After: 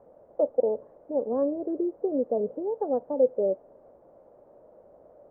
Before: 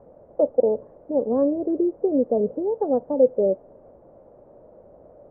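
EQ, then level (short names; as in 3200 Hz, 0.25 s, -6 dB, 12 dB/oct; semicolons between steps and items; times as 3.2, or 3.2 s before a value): low shelf 270 Hz -10 dB; -2.5 dB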